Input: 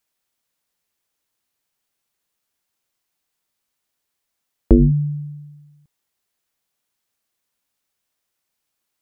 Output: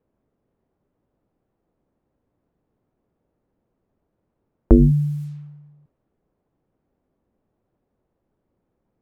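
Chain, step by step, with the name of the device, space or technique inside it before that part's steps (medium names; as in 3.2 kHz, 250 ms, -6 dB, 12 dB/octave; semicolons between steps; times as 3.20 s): cassette deck with a dynamic noise filter (white noise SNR 31 dB; level-controlled noise filter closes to 390 Hz, open at -21.5 dBFS)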